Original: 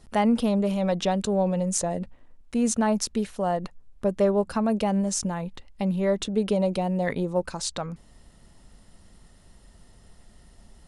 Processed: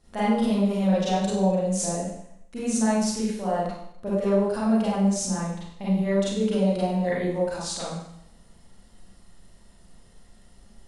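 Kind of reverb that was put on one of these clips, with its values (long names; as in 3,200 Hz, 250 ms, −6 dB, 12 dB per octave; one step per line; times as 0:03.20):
four-comb reverb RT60 0.73 s, combs from 32 ms, DRR −9 dB
level −9.5 dB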